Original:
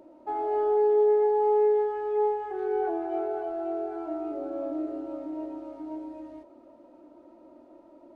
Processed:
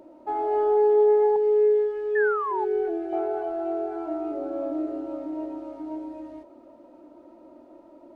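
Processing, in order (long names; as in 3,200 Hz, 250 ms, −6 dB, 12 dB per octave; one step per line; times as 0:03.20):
0:01.36–0:03.13: phaser with its sweep stopped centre 390 Hz, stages 4
0:02.15–0:02.65: sound drawn into the spectrogram fall 820–1,800 Hz −31 dBFS
level +3 dB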